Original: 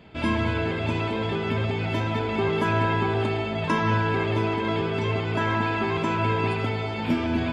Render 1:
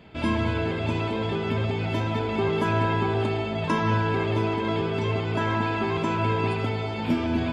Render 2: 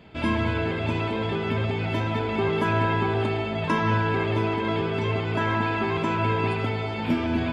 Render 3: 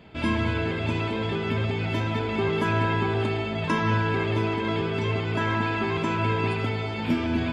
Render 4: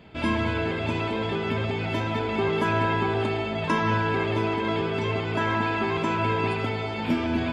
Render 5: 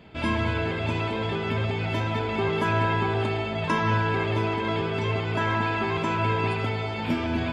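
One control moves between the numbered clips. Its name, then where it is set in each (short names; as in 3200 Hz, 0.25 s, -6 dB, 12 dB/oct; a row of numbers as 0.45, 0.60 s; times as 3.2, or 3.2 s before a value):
dynamic EQ, frequency: 1900, 6500, 740, 110, 270 Hz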